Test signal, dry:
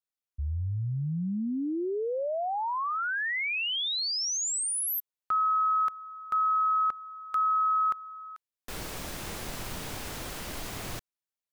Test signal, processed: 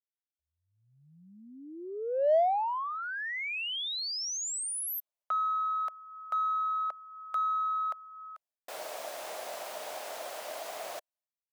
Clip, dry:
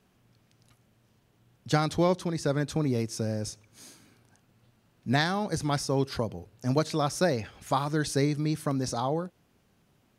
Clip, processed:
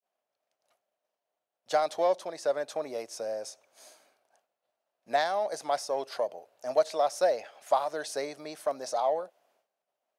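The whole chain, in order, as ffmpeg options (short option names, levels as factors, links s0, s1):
-filter_complex "[0:a]adynamicequalizer=threshold=0.01:dfrequency=1300:dqfactor=1.8:tfrequency=1300:tqfactor=1.8:attack=5:release=100:ratio=0.375:range=2.5:mode=cutabove:tftype=bell,highpass=f=630:t=q:w=4.9,asplit=2[s0][s1];[s1]asoftclip=type=tanh:threshold=0.0531,volume=0.266[s2];[s0][s2]amix=inputs=2:normalize=0,agate=range=0.0224:threshold=0.00224:ratio=3:release=348:detection=peak,volume=0.473"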